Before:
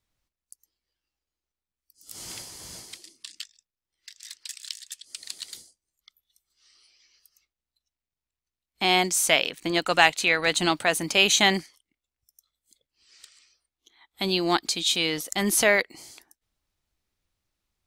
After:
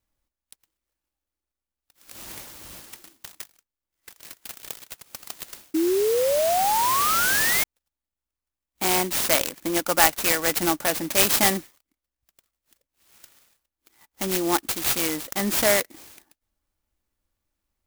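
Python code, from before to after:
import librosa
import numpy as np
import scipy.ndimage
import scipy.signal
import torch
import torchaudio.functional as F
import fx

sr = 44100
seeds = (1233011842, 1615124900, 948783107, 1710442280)

y = x + 0.36 * np.pad(x, (int(3.5 * sr / 1000.0), 0))[:len(x)]
y = fx.spec_paint(y, sr, seeds[0], shape='rise', start_s=5.74, length_s=1.9, low_hz=310.0, high_hz=2200.0, level_db=-21.0)
y = fx.clock_jitter(y, sr, seeds[1], jitter_ms=0.092)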